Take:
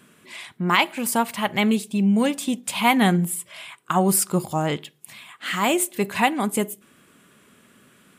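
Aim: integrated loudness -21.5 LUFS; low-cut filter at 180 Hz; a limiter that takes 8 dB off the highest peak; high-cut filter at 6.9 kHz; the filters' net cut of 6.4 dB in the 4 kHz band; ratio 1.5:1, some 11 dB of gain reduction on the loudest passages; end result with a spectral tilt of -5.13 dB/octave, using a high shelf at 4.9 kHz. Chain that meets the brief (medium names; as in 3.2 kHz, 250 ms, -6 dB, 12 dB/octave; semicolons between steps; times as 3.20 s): high-pass 180 Hz; low-pass 6.9 kHz; peaking EQ 4 kHz -7 dB; treble shelf 4.9 kHz -5.5 dB; compression 1.5:1, threshold -47 dBFS; trim +15 dB; peak limiter -10 dBFS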